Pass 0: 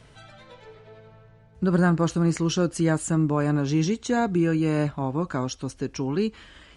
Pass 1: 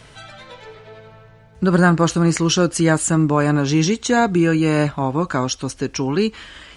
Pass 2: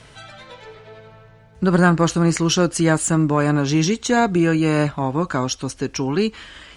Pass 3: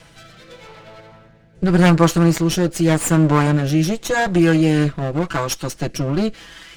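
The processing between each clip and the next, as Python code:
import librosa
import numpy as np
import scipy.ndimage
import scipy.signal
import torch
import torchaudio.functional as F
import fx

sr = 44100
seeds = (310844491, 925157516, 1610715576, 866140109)

y1 = fx.tilt_shelf(x, sr, db=-3.0, hz=690.0)
y1 = F.gain(torch.from_numpy(y1), 8.0).numpy()
y2 = fx.cheby_harmonics(y1, sr, harmonics=(2,), levels_db=(-18,), full_scale_db=-1.5)
y2 = F.gain(torch.from_numpy(y2), -1.0).numpy()
y3 = fx.lower_of_two(y2, sr, delay_ms=6.0)
y3 = fx.rotary(y3, sr, hz=0.85)
y3 = F.gain(torch.from_numpy(y3), 4.0).numpy()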